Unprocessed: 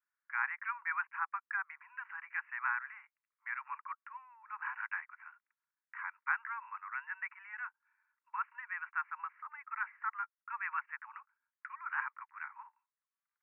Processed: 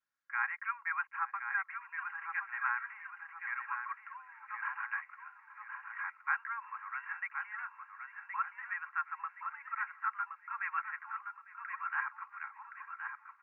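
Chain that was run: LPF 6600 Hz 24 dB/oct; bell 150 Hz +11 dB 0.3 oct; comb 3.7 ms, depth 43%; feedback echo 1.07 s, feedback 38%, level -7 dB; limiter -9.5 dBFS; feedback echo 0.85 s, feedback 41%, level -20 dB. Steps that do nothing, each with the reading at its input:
LPF 6600 Hz: input band ends at 2700 Hz; bell 150 Hz: input band starts at 720 Hz; limiter -9.5 dBFS: input peak -19.5 dBFS

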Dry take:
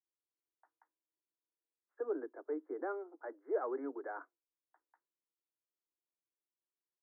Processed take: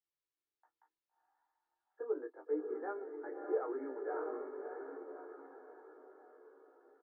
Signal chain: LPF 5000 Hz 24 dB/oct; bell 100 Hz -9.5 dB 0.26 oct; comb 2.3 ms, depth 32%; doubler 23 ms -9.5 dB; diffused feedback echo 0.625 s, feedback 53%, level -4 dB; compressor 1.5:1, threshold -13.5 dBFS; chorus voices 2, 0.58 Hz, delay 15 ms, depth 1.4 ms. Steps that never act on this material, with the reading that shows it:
LPF 5000 Hz: input band ends at 1800 Hz; bell 100 Hz: input band starts at 230 Hz; compressor, threshold -13.5 dBFS: input peak -21.5 dBFS

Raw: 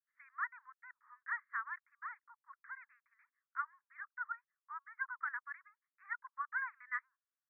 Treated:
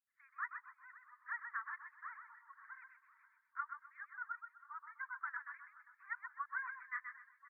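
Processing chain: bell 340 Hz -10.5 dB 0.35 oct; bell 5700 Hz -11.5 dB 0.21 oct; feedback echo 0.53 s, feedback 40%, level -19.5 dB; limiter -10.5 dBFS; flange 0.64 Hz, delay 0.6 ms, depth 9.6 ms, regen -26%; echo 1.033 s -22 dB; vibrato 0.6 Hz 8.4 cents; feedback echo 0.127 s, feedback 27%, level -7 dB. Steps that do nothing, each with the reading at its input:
bell 340 Hz: input band starts at 850 Hz; bell 5700 Hz: input band ends at 2300 Hz; limiter -10.5 dBFS: input peak -25.5 dBFS

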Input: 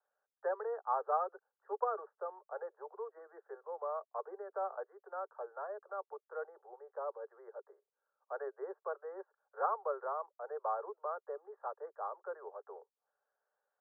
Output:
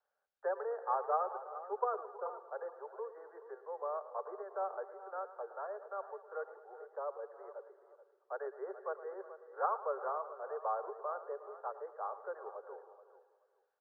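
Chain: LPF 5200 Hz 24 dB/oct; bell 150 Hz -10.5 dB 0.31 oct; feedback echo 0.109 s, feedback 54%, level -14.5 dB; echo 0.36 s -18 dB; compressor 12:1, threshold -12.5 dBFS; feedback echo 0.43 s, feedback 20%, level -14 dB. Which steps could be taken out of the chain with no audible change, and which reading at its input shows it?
LPF 5200 Hz: input band ends at 1700 Hz; bell 150 Hz: input band starts at 340 Hz; compressor, threshold -12.5 dBFS: input peak -19.5 dBFS

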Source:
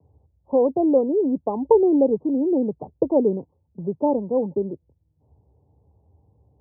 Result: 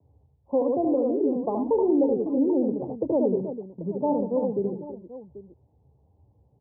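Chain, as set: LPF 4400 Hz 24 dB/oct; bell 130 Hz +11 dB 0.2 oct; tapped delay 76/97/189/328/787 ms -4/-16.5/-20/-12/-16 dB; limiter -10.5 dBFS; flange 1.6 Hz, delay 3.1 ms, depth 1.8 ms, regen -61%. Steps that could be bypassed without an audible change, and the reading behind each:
LPF 4400 Hz: input band ends at 1000 Hz

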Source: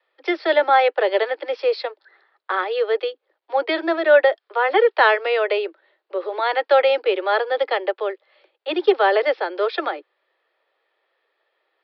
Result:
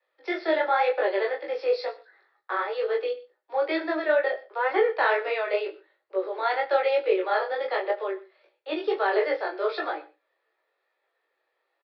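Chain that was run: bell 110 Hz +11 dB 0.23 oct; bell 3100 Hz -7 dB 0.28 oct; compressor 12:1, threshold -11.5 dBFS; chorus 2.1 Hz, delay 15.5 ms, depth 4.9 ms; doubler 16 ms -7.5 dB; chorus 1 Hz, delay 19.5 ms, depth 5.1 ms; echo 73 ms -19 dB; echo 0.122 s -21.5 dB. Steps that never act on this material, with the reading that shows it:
bell 110 Hz: input band starts at 270 Hz

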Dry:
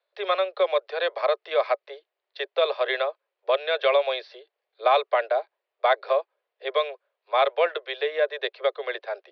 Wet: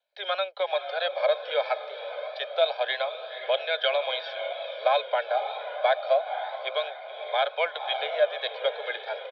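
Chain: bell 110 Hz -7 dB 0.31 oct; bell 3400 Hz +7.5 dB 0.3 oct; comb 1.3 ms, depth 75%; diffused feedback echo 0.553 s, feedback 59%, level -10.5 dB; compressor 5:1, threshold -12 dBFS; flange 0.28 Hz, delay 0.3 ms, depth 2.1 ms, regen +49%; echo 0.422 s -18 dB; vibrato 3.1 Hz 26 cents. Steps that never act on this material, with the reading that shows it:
bell 110 Hz: input band starts at 340 Hz

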